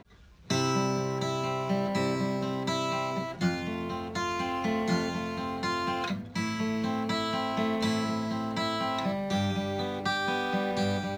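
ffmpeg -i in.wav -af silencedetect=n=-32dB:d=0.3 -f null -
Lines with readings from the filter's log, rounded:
silence_start: 0.00
silence_end: 0.50 | silence_duration: 0.50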